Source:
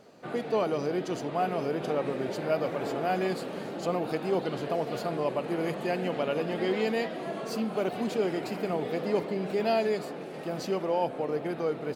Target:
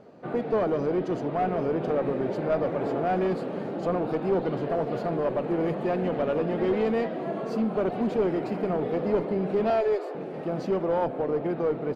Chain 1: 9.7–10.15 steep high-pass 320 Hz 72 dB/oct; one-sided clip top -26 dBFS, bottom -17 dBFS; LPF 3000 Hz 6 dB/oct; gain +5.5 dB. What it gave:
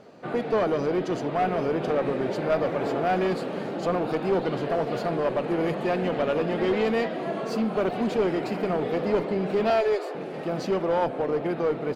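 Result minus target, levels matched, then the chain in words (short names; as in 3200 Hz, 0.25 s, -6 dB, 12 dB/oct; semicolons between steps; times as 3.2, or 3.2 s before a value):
4000 Hz band +7.0 dB
9.7–10.15 steep high-pass 320 Hz 72 dB/oct; one-sided clip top -26 dBFS, bottom -17 dBFS; LPF 890 Hz 6 dB/oct; gain +5.5 dB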